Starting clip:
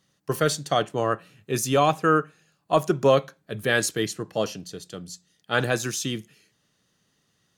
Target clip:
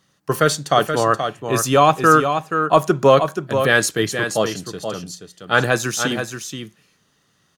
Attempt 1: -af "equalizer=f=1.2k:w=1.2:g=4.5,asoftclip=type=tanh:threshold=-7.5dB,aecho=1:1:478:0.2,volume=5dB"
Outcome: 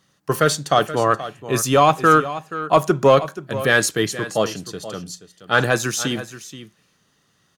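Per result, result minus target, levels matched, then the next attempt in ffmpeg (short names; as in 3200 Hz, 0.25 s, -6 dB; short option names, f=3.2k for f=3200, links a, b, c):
soft clip: distortion +12 dB; echo-to-direct -6.5 dB
-af "equalizer=f=1.2k:w=1.2:g=4.5,asoftclip=type=tanh:threshold=-0.5dB,aecho=1:1:478:0.2,volume=5dB"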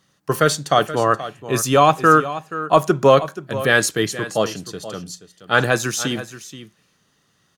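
echo-to-direct -6.5 dB
-af "equalizer=f=1.2k:w=1.2:g=4.5,asoftclip=type=tanh:threshold=-0.5dB,aecho=1:1:478:0.422,volume=5dB"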